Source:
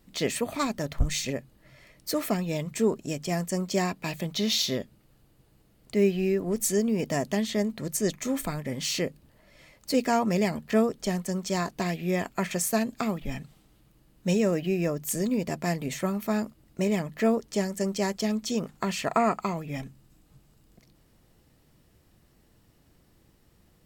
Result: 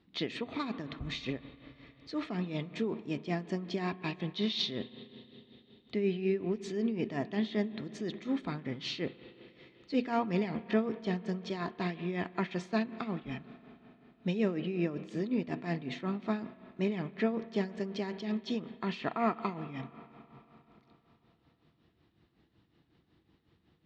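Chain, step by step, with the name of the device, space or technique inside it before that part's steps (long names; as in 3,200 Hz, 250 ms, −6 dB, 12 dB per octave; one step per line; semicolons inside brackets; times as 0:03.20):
combo amplifier with spring reverb and tremolo (spring reverb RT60 3.8 s, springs 32/44 ms, chirp 70 ms, DRR 13 dB; amplitude tremolo 5.4 Hz, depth 65%; loudspeaker in its box 80–4,000 Hz, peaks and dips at 320 Hz +5 dB, 570 Hz −7 dB, 3,700 Hz +5 dB)
level −3.5 dB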